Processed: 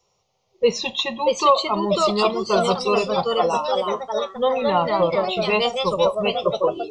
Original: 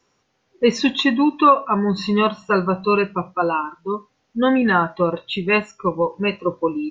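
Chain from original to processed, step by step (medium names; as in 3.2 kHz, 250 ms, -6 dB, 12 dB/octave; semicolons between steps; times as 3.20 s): ever faster or slower copies 703 ms, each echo +2 st, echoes 3; static phaser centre 670 Hz, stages 4; trim +1.5 dB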